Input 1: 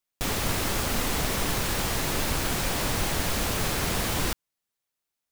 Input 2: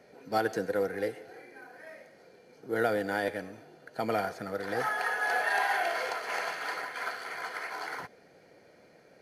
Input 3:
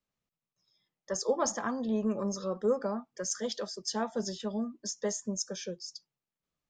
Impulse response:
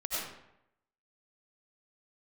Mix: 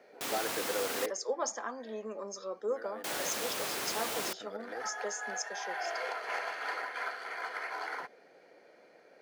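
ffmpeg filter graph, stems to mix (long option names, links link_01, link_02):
-filter_complex "[0:a]volume=-7dB,asplit=3[link_01][link_02][link_03];[link_01]atrim=end=1.06,asetpts=PTS-STARTPTS,afade=type=out:start_time=1.056:duration=0.004:curve=hsin[link_04];[link_02]atrim=start=1.06:end=3.04,asetpts=PTS-STARTPTS,volume=0[link_05];[link_03]atrim=start=3.04,asetpts=PTS-STARTPTS,afade=type=in:duration=0.004:curve=hsin[link_06];[link_04][link_05][link_06]concat=n=3:v=0:a=1[link_07];[1:a]lowpass=frequency=3800:poles=1,alimiter=level_in=0.5dB:limit=-24dB:level=0:latency=1:release=424,volume=-0.5dB,volume=0.5dB[link_08];[2:a]highpass=260,volume=-3.5dB,asplit=2[link_09][link_10];[link_10]apad=whole_len=406354[link_11];[link_08][link_11]sidechaincompress=threshold=-40dB:ratio=10:attack=12:release=778[link_12];[link_07][link_12][link_09]amix=inputs=3:normalize=0,highpass=350"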